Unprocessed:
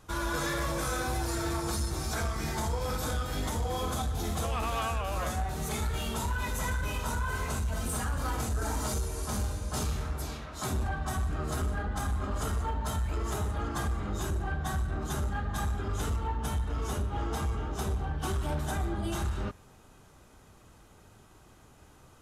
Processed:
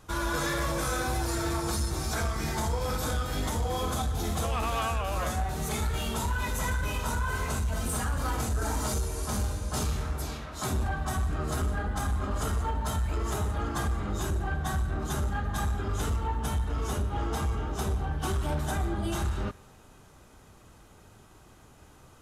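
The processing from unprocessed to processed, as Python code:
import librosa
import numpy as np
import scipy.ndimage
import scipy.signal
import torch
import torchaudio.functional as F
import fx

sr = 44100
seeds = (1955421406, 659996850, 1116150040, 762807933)

y = fx.echo_thinned(x, sr, ms=167, feedback_pct=55, hz=420.0, wet_db=-24)
y = F.gain(torch.from_numpy(y), 2.0).numpy()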